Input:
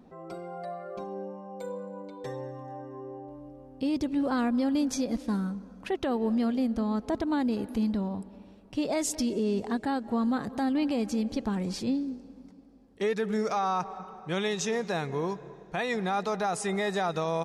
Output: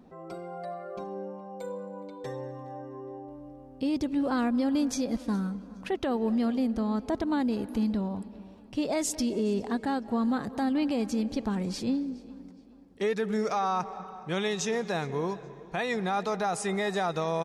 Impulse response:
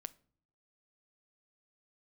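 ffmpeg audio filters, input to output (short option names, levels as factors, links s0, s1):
-filter_complex "[0:a]asplit=2[s0][s1];[s1]adelay=416,lowpass=f=4800:p=1,volume=0.0891,asplit=2[s2][s3];[s3]adelay=416,lowpass=f=4800:p=1,volume=0.43,asplit=2[s4][s5];[s5]adelay=416,lowpass=f=4800:p=1,volume=0.43[s6];[s0][s2][s4][s6]amix=inputs=4:normalize=0"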